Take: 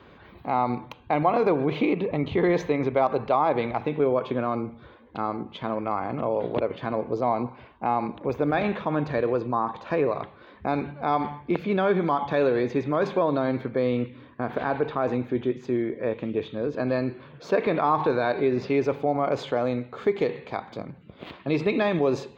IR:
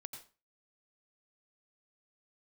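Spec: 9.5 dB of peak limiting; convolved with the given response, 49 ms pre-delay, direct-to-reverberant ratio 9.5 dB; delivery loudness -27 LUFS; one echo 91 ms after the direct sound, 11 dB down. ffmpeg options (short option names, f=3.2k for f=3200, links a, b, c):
-filter_complex "[0:a]alimiter=limit=-19.5dB:level=0:latency=1,aecho=1:1:91:0.282,asplit=2[a][b];[1:a]atrim=start_sample=2205,adelay=49[c];[b][c]afir=irnorm=-1:irlink=0,volume=-5dB[d];[a][d]amix=inputs=2:normalize=0,volume=3dB"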